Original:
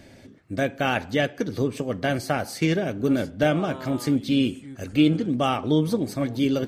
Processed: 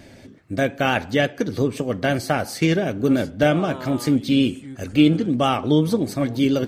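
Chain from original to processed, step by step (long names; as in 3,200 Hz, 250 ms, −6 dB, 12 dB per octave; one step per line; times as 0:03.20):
pitch vibrato 5.7 Hz 32 cents
level +3.5 dB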